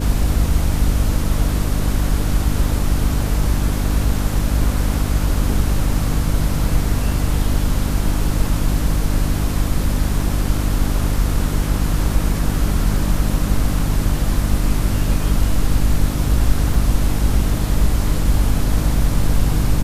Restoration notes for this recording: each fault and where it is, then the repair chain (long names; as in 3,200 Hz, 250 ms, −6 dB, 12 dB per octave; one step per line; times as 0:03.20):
mains hum 50 Hz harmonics 6 −21 dBFS
0:16.74: drop-out 3.5 ms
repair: hum removal 50 Hz, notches 6
repair the gap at 0:16.74, 3.5 ms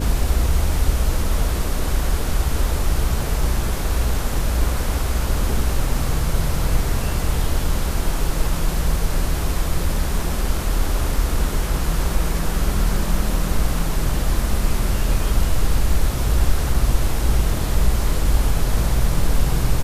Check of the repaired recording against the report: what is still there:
none of them is left